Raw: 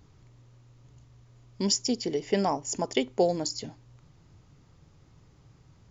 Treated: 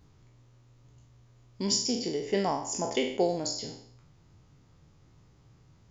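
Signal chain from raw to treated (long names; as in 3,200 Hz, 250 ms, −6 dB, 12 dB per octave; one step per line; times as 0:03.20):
peak hold with a decay on every bin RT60 0.60 s
level −4 dB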